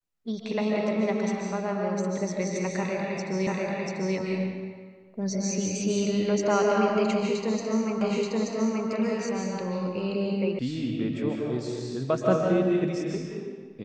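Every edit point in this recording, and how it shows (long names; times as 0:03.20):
0:03.47: the same again, the last 0.69 s
0:08.01: the same again, the last 0.88 s
0:10.59: cut off before it has died away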